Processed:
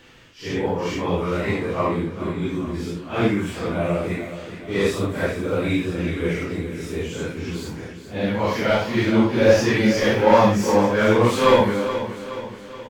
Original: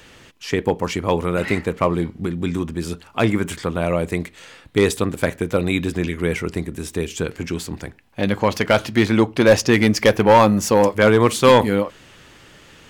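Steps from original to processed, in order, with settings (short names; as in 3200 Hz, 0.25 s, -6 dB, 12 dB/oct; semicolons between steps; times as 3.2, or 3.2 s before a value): phase scrambler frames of 0.2 s; bell 10000 Hz -8.5 dB 0.92 oct; on a send: feedback echo 0.423 s, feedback 51%, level -11.5 dB; on the sum: gain -2.5 dB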